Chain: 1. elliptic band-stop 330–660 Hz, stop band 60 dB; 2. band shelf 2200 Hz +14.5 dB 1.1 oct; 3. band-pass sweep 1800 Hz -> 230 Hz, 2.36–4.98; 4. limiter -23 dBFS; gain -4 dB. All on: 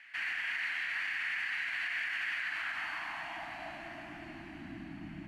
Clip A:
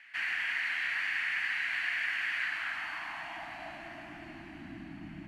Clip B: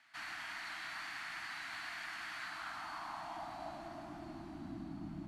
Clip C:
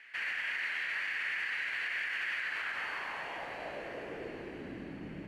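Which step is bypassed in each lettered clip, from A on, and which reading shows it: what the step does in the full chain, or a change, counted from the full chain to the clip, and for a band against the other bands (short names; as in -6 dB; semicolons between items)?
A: 4, crest factor change +4.0 dB; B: 2, 2 kHz band -10.5 dB; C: 1, 500 Hz band +7.0 dB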